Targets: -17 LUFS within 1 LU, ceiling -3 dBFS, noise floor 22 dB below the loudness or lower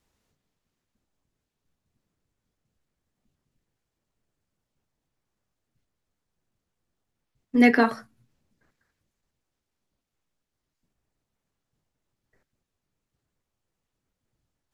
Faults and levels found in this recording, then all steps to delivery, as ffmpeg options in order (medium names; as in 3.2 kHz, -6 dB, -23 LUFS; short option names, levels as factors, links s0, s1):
loudness -21.0 LUFS; peak level -5.0 dBFS; loudness target -17.0 LUFS
-> -af "volume=1.58,alimiter=limit=0.708:level=0:latency=1"